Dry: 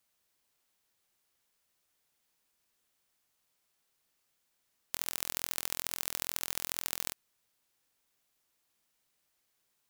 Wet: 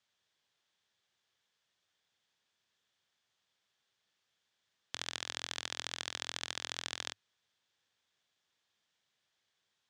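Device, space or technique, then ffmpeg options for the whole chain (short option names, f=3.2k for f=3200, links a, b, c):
car door speaker: -af "highpass=95,equalizer=f=100:t=q:w=4:g=6,equalizer=f=290:t=q:w=4:g=-5,equalizer=f=1.7k:t=q:w=4:g=5,equalizer=f=3.4k:t=q:w=4:g=8,lowpass=f=6.7k:w=0.5412,lowpass=f=6.7k:w=1.3066,volume=-2dB"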